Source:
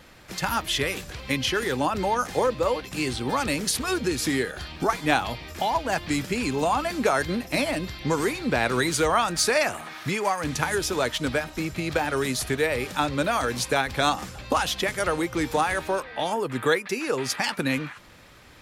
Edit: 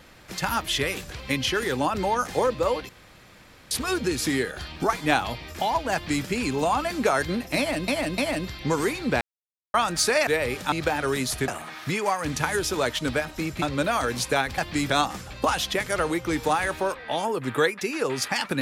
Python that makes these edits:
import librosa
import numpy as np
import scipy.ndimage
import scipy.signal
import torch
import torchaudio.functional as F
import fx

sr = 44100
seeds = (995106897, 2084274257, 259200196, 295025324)

y = fx.edit(x, sr, fx.room_tone_fill(start_s=2.89, length_s=0.82),
    fx.duplicate(start_s=5.93, length_s=0.32, to_s=13.98),
    fx.repeat(start_s=7.58, length_s=0.3, count=3),
    fx.silence(start_s=8.61, length_s=0.53),
    fx.swap(start_s=9.67, length_s=2.14, other_s=12.57, other_length_s=0.45), tone=tone)